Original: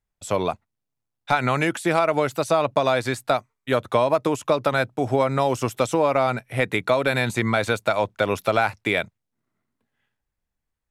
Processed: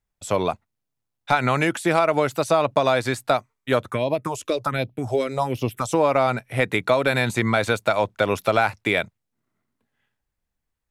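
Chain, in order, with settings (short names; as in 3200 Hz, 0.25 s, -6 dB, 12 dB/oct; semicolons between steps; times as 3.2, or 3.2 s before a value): 3.9–5.93 phaser stages 4, 1.3 Hz, lowest notch 140–1500 Hz; gain +1 dB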